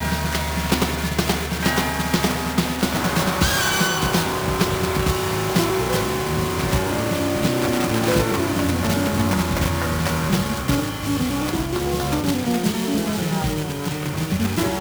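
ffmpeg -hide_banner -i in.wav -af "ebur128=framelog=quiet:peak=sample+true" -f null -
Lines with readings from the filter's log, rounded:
Integrated loudness:
  I:         -21.2 LUFS
  Threshold: -31.2 LUFS
Loudness range:
  LRA:         2.3 LU
  Threshold: -41.1 LUFS
  LRA low:   -22.4 LUFS
  LRA high:  -20.1 LUFS
Sample peak:
  Peak:       -5.0 dBFS
True peak:
  Peak:       -4.3 dBFS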